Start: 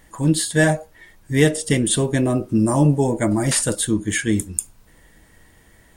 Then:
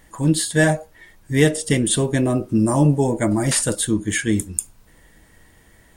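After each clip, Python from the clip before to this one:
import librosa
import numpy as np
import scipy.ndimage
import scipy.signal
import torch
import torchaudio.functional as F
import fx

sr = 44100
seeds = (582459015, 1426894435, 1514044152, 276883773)

y = x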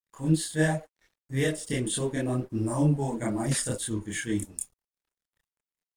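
y = np.sign(x) * np.maximum(np.abs(x) - 10.0 ** (-42.5 / 20.0), 0.0)
y = fx.chorus_voices(y, sr, voices=4, hz=1.1, base_ms=28, depth_ms=3.9, mix_pct=55)
y = F.gain(torch.from_numpy(y), -6.5).numpy()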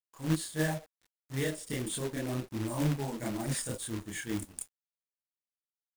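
y = fx.quant_companded(x, sr, bits=4)
y = F.gain(torch.from_numpy(y), -6.5).numpy()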